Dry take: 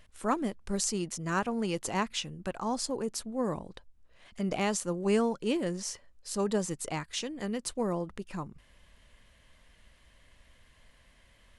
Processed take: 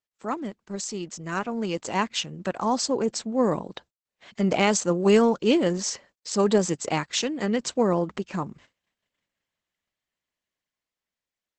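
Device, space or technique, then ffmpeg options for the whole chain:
video call: -af "highpass=150,dynaudnorm=f=550:g=7:m=3.16,agate=range=0.02:threshold=0.00316:ratio=16:detection=peak" -ar 48000 -c:a libopus -b:a 12k

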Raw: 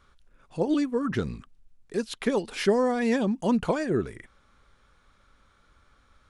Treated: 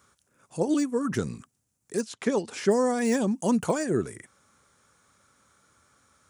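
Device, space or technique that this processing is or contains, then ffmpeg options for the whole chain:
budget condenser microphone: -filter_complex "[0:a]deesser=0.9,asettb=1/sr,asplit=3[s0][s1][s2];[s0]atrim=end=2.014[s3];[s1]atrim=start=2.01:end=2.71,asetpts=PTS-STARTPTS,afade=t=in:d=0.004:c=qsin,afade=t=out:st=0.696:d=0.004:c=qsin,lowpass=5600[s4];[s2]atrim=start=2.706[s5];[s3][s4]acrossfade=d=0.004:c1=hsin:c2=qsin[s6];[s6][s5]acrossfade=d=0.004:c1=qsin:c2=hsin,highpass=f=90:w=0.5412,highpass=f=90:w=1.3066,highshelf=f=5200:t=q:w=1.5:g=11"

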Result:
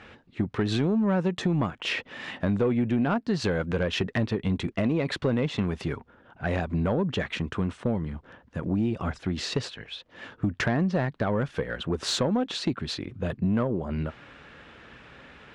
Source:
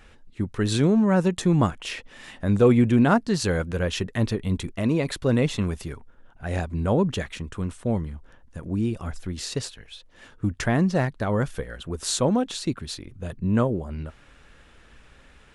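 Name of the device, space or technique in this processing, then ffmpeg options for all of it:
AM radio: -af "highpass=110,lowpass=3600,acompressor=threshold=0.0398:ratio=6,asoftclip=type=tanh:threshold=0.075,volume=2.24"

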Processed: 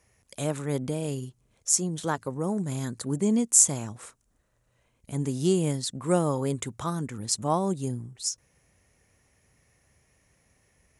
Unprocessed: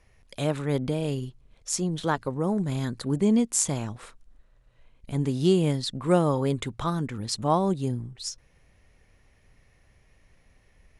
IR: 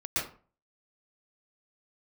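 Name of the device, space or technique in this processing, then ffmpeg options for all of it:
budget condenser microphone: -af "highpass=74,highshelf=f=5300:t=q:w=1.5:g=8,volume=0.75"

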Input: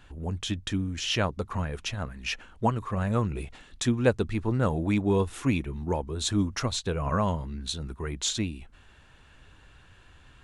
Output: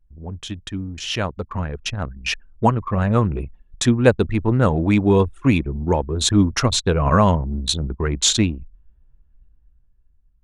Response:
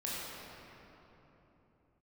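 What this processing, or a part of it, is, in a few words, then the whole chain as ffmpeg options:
voice memo with heavy noise removal: -af "anlmdn=3.98,dynaudnorm=f=700:g=5:m=4.47"

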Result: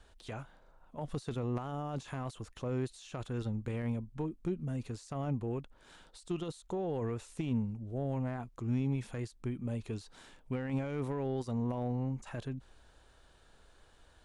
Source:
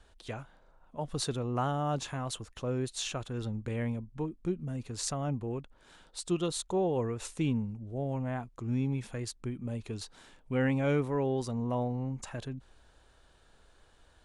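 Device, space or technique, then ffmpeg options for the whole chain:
de-esser from a sidechain: -filter_complex "[0:a]asplit=2[s0][s1];[s1]highpass=f=6600:p=1,apad=whole_len=628030[s2];[s0][s2]sidechaincompress=threshold=0.002:ratio=20:attack=2.4:release=25"

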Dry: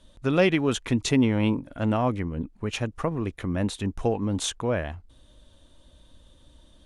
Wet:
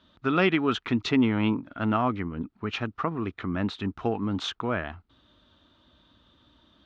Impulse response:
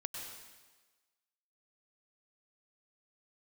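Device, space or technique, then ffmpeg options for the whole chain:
guitar cabinet: -af "highpass=110,equalizer=f=140:t=q:w=4:g=-6,equalizer=f=530:t=q:w=4:g=-9,equalizer=f=1300:t=q:w=4:g=9,lowpass=f=4400:w=0.5412,lowpass=f=4400:w=1.3066"

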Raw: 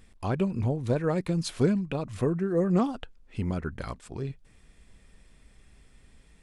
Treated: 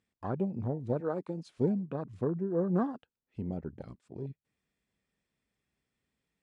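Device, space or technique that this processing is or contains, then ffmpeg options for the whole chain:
over-cleaned archive recording: -filter_complex "[0:a]asettb=1/sr,asplit=3[s0][s1][s2];[s0]atrim=end=1.004[s3];[s1]atrim=start=1:end=1.46,asetpts=PTS-STARTPTS,afade=t=in:d=0.004:c=qsin,afade=t=out:st=0.456:d=0.004:c=qsin,highpass=250[s4];[s2]atrim=start=1.456[s5];[s3][s4]acrossfade=d=0.004:c1=hsin:c2=qsin[s6];[s6][s5]acrossfade=d=0.004:c1=qsin:c2=hsin,highpass=120,lowpass=7800,afwtdn=0.02,volume=0.596"

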